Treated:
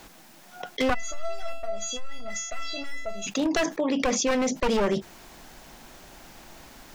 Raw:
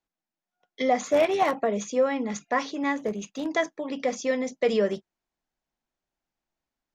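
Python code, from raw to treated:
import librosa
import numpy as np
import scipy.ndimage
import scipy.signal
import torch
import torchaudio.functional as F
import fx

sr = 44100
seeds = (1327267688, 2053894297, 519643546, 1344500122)

y = np.minimum(x, 2.0 * 10.0 ** (-25.0 / 20.0) - x)
y = fx.comb_fb(y, sr, f0_hz=670.0, decay_s=0.33, harmonics='all', damping=0.0, mix_pct=100, at=(0.93, 3.26), fade=0.02)
y = fx.env_flatten(y, sr, amount_pct=70)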